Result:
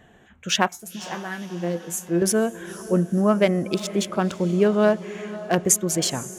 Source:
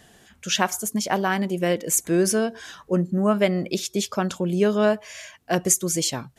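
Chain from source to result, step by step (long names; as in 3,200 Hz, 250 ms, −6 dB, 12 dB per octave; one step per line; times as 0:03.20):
adaptive Wiener filter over 9 samples
0:00.68–0:02.22: tuned comb filter 170 Hz, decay 0.18 s, harmonics all, mix 90%
feedback delay with all-pass diffusion 517 ms, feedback 51%, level −15.5 dB
level +1.5 dB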